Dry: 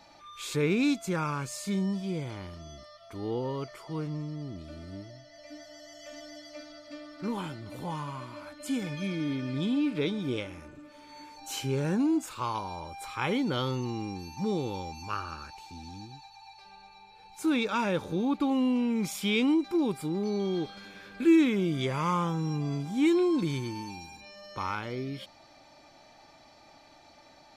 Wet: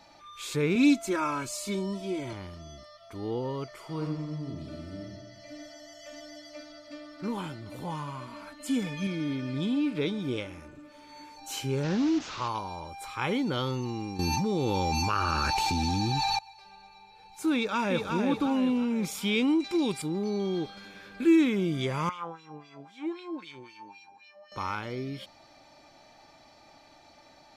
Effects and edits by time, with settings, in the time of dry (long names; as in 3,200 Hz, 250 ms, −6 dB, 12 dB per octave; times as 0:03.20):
0:00.75–0:02.33: comb filter 3.1 ms, depth 99%
0:03.75–0:05.68: thrown reverb, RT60 1.1 s, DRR 2 dB
0:08.27–0:09.07: comb filter 4.4 ms, depth 59%
0:11.83–0:12.48: linear delta modulator 32 kbit/s, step −32.5 dBFS
0:14.19–0:16.39: envelope flattener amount 100%
0:17.54–0:18.11: delay throw 360 ms, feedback 45%, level −4.5 dB
0:19.60–0:20.02: flat-topped bell 4,200 Hz +9.5 dB 2.5 octaves
0:22.09–0:24.52: LFO wah 3.8 Hz 550–3,200 Hz, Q 2